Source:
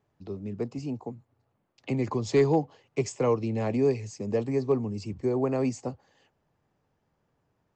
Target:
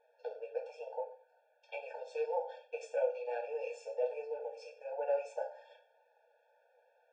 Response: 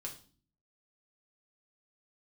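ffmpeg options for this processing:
-filter_complex "[0:a]asetrate=48000,aresample=44100,areverse,acompressor=threshold=-32dB:ratio=20,areverse,alimiter=level_in=9dB:limit=-24dB:level=0:latency=1:release=160,volume=-9dB,flanger=delay=8.6:depth=6.7:regen=34:speed=1.2:shape=triangular,lowpass=2.7k,bandreject=f=50:t=h:w=6,bandreject=f=100:t=h:w=6,bandreject=f=150:t=h:w=6,bandreject=f=200:t=h:w=6,bandreject=f=250:t=h:w=6,bandreject=f=300:t=h:w=6,bandreject=f=350:t=h:w=6[a];[1:a]atrim=start_sample=2205[b];[a][b]afir=irnorm=-1:irlink=0,afftfilt=real='re*eq(mod(floor(b*sr/1024/460),2),1)':imag='im*eq(mod(floor(b*sr/1024/460),2),1)':win_size=1024:overlap=0.75,volume=16.5dB"

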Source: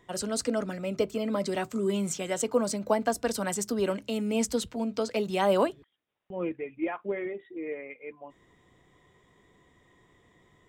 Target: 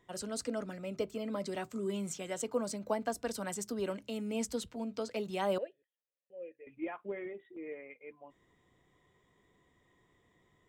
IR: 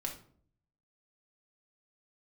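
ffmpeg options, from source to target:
-filter_complex "[0:a]asettb=1/sr,asplit=3[a][b][c];[a]atrim=end=5.584[d];[b]atrim=start=5.58:end=6.67,asetpts=PTS-STARTPTS,afade=t=in:d=0.004:c=qsin,afade=t=out:st=1.086:d=0.004:c=qsin,asplit=3[e][f][g];[e]bandpass=f=530:t=q:w=8,volume=0dB[h];[f]bandpass=f=1.84k:t=q:w=8,volume=-6dB[i];[g]bandpass=f=2.48k:t=q:w=8,volume=-9dB[j];[h][i][j]amix=inputs=3:normalize=0[k];[c]atrim=start=6.666[l];[d][k]acrossfade=d=0.004:c1=hsin:c2=qsin[m];[m][l]acrossfade=d=0.004:c1=qsin:c2=hsin,asettb=1/sr,asplit=3[n][o][p];[n]atrim=end=7.564[q];[o]atrim=start=7.56:end=8.01,asetpts=PTS-STARTPTS,afade=t=in:d=0.004:c=qsin,afade=t=out:st=0.446:d=0.004:c=qsin,agate=range=-11dB:threshold=-46dB:ratio=16:detection=peak[r];[p]atrim=start=8.006[s];[q][r]acrossfade=d=0.004:c1=hsin:c2=qsin[t];[t][s]acrossfade=d=0.004:c1=qsin:c2=hsin,volume=-8dB"

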